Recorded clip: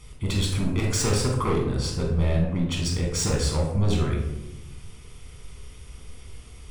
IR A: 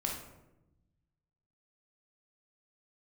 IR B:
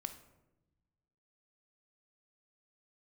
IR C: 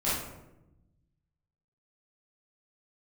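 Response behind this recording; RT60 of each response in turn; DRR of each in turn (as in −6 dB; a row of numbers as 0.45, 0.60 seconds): A; 0.95, 1.0, 0.95 seconds; −1.0, 8.0, −11.0 decibels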